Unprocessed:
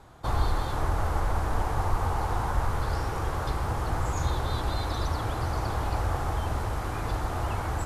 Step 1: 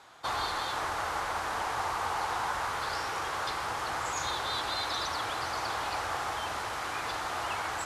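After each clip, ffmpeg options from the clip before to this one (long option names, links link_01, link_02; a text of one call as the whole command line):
ffmpeg -i in.wav -af "bandpass=frequency=3400:width_type=q:width=0.53:csg=0,volume=6.5dB" out.wav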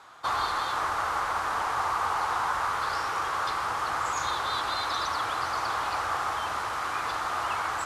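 ffmpeg -i in.wav -af "equalizer=frequency=1200:width_type=o:width=0.69:gain=7.5" out.wav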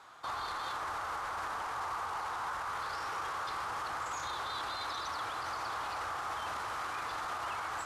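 ffmpeg -i in.wav -af "alimiter=level_in=2dB:limit=-24dB:level=0:latency=1:release=20,volume=-2dB,volume=-4dB" out.wav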